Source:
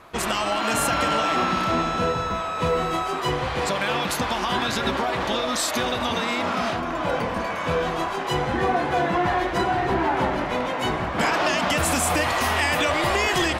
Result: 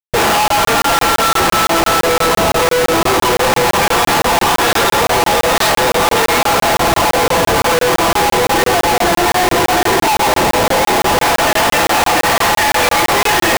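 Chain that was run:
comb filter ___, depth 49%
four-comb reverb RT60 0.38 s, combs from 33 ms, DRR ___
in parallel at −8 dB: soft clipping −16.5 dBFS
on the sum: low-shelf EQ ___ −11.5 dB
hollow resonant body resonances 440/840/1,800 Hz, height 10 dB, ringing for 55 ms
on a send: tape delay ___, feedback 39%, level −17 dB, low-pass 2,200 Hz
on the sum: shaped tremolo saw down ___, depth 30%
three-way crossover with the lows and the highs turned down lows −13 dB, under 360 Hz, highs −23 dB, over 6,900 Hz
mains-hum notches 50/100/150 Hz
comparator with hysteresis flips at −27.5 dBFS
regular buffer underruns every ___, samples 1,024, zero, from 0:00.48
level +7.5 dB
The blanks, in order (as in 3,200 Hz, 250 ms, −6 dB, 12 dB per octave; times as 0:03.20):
5.9 ms, 5.5 dB, 86 Hz, 441 ms, 0.65 Hz, 0.17 s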